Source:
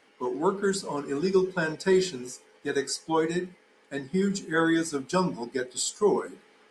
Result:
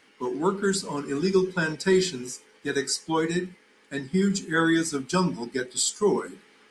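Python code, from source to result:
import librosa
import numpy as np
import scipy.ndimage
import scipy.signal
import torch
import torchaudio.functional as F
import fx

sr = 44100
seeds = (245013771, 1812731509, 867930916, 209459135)

y = fx.peak_eq(x, sr, hz=640.0, db=-8.0, octaves=1.4)
y = F.gain(torch.from_numpy(y), 4.5).numpy()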